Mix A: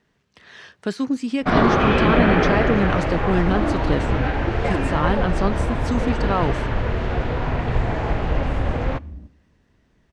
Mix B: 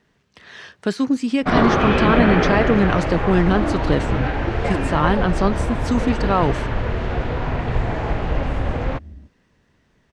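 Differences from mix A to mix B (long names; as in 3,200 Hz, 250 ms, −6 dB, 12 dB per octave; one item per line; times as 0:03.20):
speech +3.5 dB
second sound: send off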